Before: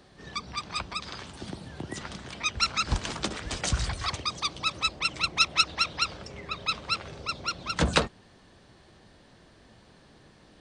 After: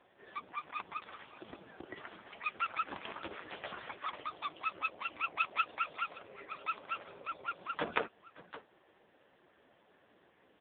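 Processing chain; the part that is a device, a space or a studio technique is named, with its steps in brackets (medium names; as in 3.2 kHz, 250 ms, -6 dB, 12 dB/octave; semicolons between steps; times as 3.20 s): satellite phone (band-pass 340–3100 Hz; delay 569 ms -17.5 dB; trim -2.5 dB; AMR-NB 5.15 kbps 8 kHz)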